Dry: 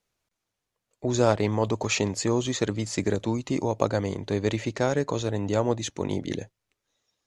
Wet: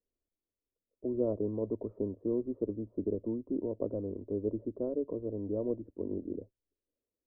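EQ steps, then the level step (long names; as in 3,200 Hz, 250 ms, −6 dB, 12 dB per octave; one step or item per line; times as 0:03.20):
Butterworth low-pass 920 Hz 48 dB per octave
high-frequency loss of the air 430 metres
phaser with its sweep stopped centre 340 Hz, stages 4
−4.5 dB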